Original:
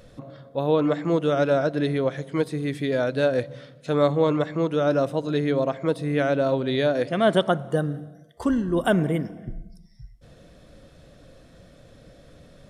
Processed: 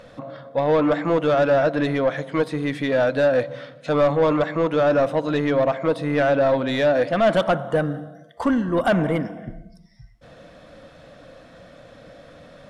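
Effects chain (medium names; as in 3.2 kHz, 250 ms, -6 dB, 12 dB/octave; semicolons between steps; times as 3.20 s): peaking EQ 390 Hz -13.5 dB 0.22 oct; overdrive pedal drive 19 dB, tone 1.4 kHz, clips at -8.5 dBFS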